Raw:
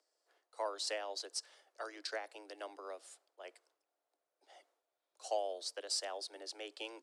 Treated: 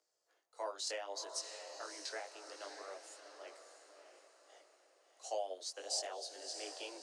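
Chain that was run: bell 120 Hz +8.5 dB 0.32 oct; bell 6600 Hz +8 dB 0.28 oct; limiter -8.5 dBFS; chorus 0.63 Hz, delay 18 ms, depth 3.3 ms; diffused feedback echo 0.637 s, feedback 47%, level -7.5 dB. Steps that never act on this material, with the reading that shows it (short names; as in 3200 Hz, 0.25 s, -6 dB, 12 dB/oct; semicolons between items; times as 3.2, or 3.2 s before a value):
bell 120 Hz: input band starts at 270 Hz; limiter -8.5 dBFS: input peak -23.0 dBFS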